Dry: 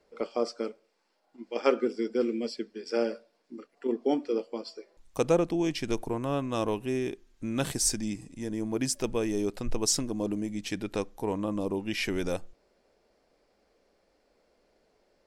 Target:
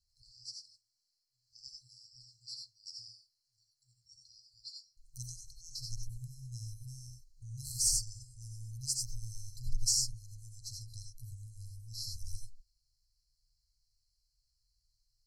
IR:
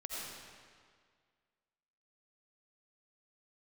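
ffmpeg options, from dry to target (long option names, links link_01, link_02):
-filter_complex "[1:a]atrim=start_sample=2205,afade=type=out:start_time=0.15:duration=0.01,atrim=end_sample=7056[link_01];[0:a][link_01]afir=irnorm=-1:irlink=0,afftfilt=real='re*(1-between(b*sr/4096,130,4000))':imag='im*(1-between(b*sr/4096,130,4000))':win_size=4096:overlap=0.75,aeval=exprs='0.168*(cos(1*acos(clip(val(0)/0.168,-1,1)))-cos(1*PI/2))+0.00133*(cos(4*acos(clip(val(0)/0.168,-1,1)))-cos(4*PI/2))':channel_layout=same,volume=2dB"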